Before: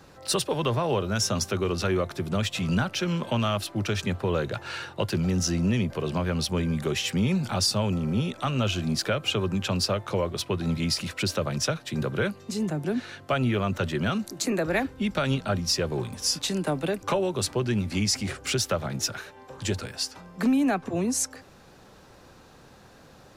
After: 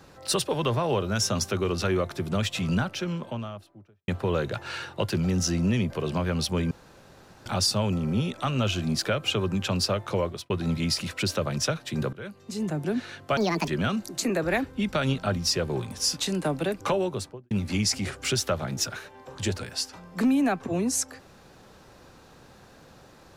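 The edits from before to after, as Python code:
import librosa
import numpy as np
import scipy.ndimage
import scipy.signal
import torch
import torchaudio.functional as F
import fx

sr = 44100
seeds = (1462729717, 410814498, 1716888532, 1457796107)

y = fx.studio_fade_out(x, sr, start_s=2.53, length_s=1.55)
y = fx.studio_fade_out(y, sr, start_s=17.21, length_s=0.52)
y = fx.edit(y, sr, fx.room_tone_fill(start_s=6.71, length_s=0.75),
    fx.fade_out_span(start_s=10.25, length_s=0.25),
    fx.fade_in_from(start_s=12.13, length_s=0.61, floor_db=-21.0),
    fx.speed_span(start_s=13.37, length_s=0.53, speed=1.72), tone=tone)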